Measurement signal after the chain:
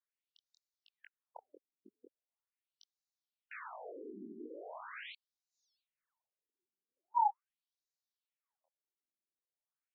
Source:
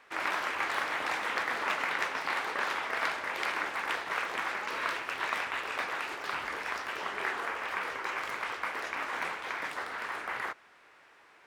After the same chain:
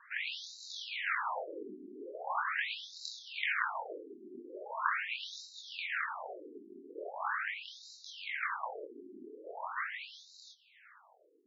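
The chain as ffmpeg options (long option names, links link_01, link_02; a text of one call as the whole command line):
ffmpeg -i in.wav -af "flanger=delay=19:depth=6.4:speed=1.1,afftfilt=real='re*between(b*sr/1024,280*pow(5300/280,0.5+0.5*sin(2*PI*0.41*pts/sr))/1.41,280*pow(5300/280,0.5+0.5*sin(2*PI*0.41*pts/sr))*1.41)':imag='im*between(b*sr/1024,280*pow(5300/280,0.5+0.5*sin(2*PI*0.41*pts/sr))/1.41,280*pow(5300/280,0.5+0.5*sin(2*PI*0.41*pts/sr))*1.41)':win_size=1024:overlap=0.75,volume=5.5dB" out.wav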